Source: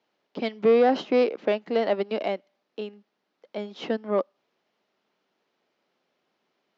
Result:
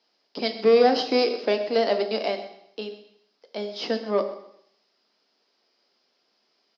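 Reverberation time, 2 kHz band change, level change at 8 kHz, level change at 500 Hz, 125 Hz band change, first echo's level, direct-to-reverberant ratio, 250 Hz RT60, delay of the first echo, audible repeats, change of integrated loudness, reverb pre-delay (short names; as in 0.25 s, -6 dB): 0.75 s, +2.5 dB, n/a, +1.5 dB, n/a, -16.0 dB, 6.5 dB, 0.75 s, 0.128 s, 2, +1.0 dB, 3 ms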